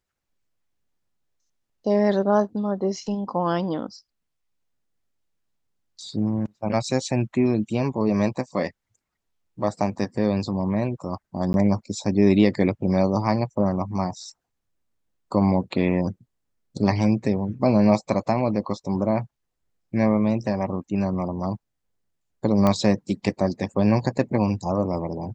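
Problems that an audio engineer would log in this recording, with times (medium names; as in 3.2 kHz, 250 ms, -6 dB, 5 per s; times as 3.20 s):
11.53–11.54 s: dropout 11 ms
22.67 s: pop -9 dBFS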